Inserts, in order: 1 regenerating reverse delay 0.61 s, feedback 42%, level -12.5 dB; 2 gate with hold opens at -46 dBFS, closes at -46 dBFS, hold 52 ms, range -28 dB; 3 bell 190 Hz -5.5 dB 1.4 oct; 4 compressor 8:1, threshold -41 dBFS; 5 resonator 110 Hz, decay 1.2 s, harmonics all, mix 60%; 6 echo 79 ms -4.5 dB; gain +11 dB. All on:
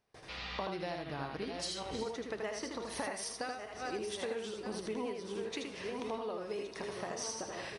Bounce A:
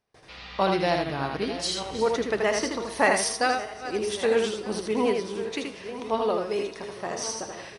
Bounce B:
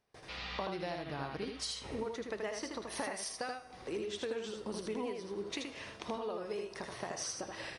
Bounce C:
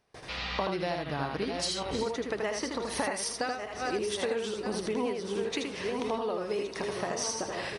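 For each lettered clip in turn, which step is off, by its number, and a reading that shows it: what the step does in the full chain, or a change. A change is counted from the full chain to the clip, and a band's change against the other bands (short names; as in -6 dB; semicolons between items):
4, mean gain reduction 9.0 dB; 1, momentary loudness spread change +1 LU; 5, loudness change +7.0 LU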